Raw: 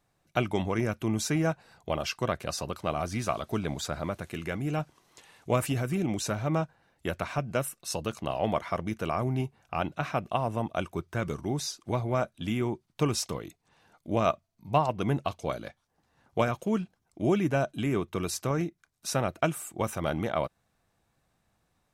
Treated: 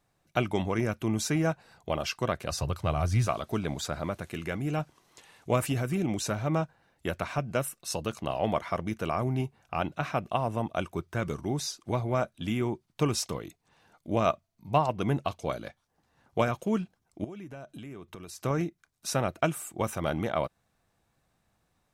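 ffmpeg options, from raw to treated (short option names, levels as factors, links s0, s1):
-filter_complex "[0:a]asettb=1/sr,asplit=3[s0][s1][s2];[s0]atrim=end=2.514[s3];[s1]atrim=start=2.51:end=3.27,asetpts=PTS-STARTPTS,afade=t=in:d=0.004:c=qsin,afade=t=out:st=0.756:d=0.004:c=qsin,lowshelf=f=160:t=q:w=1.5:g=9.5[s4];[s2]atrim=start=3.266[s5];[s3][s4]acrossfade=d=0.004:c1=hsin:c2=qsin[s6];[s6][s5]acrossfade=d=0.004:c1=qsin:c2=hsin,asettb=1/sr,asplit=3[s7][s8][s9];[s7]atrim=end=17.244[s10];[s8]atrim=start=17.24:end=18.44,asetpts=PTS-STARTPTS,afade=t=in:d=0.004:c=qsin,afade=t=out:st=1.196:d=0.004:c=qsin,acompressor=threshold=0.01:ratio=8:attack=3.2:release=140:knee=1:detection=peak[s11];[s9]atrim=start=18.436[s12];[s10][s11]acrossfade=d=0.004:c1=hsin:c2=qsin[s13];[s13][s12]acrossfade=d=0.004:c1=qsin:c2=hsin"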